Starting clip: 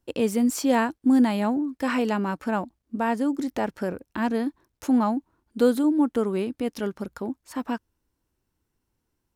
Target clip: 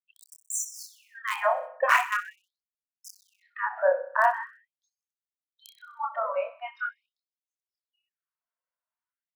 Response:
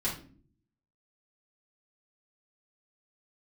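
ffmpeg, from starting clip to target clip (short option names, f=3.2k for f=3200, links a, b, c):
-filter_complex "[0:a]afftdn=nr=24:nf=-33,asplit=2[a][b];[b]adelay=27,volume=-2dB[c];[a][c]amix=inputs=2:normalize=0,acrossover=split=2400[d][e];[d]alimiter=limit=-17dB:level=0:latency=1:release=73[f];[e]aeval=exprs='val(0)*gte(abs(val(0)),0.0126)':c=same[g];[f][g]amix=inputs=2:normalize=0,equalizer=f=240:t=o:w=0.66:g=5,aecho=1:1:63|126|189|252|315:0.2|0.104|0.054|0.0281|0.0146,acrossover=split=400[h][i];[h]acompressor=threshold=-24dB:ratio=1.5[j];[j][i]amix=inputs=2:normalize=0,bandreject=f=820:w=5.3,dynaudnorm=f=470:g=3:m=14.5dB,afftfilt=real='re*gte(b*sr/1024,480*pow(5900/480,0.5+0.5*sin(2*PI*0.43*pts/sr)))':imag='im*gte(b*sr/1024,480*pow(5900/480,0.5+0.5*sin(2*PI*0.43*pts/sr)))':win_size=1024:overlap=0.75"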